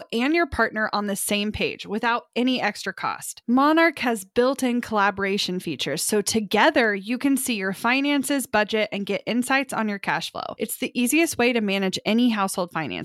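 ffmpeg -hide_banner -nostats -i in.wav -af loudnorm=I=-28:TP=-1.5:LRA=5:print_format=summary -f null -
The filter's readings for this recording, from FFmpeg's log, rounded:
Input Integrated:    -22.7 LUFS
Input True Peak:      -5.8 dBTP
Input LRA:             1.8 LU
Input Threshold:     -32.7 LUFS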